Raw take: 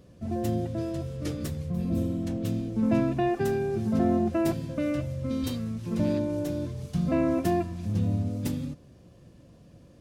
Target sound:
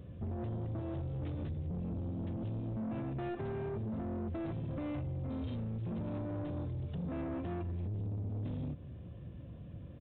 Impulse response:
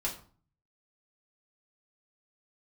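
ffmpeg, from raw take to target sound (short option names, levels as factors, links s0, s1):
-af "equalizer=f=83:t=o:w=2:g=11,alimiter=limit=0.112:level=0:latency=1:release=182,acompressor=threshold=0.0282:ratio=2.5,aresample=8000,asoftclip=type=tanh:threshold=0.0211,aresample=44100,volume=0.891"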